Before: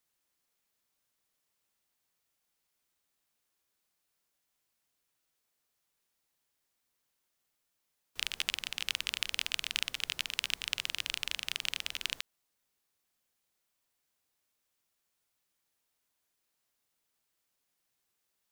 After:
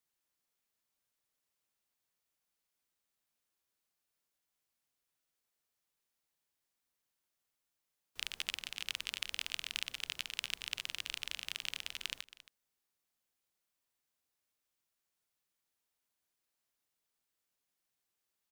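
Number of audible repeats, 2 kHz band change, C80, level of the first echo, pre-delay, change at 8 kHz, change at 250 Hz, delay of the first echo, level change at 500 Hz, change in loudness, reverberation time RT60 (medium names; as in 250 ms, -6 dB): 1, -5.5 dB, no reverb, -17.0 dB, no reverb, -5.5 dB, -5.5 dB, 273 ms, -5.5 dB, -5.5 dB, no reverb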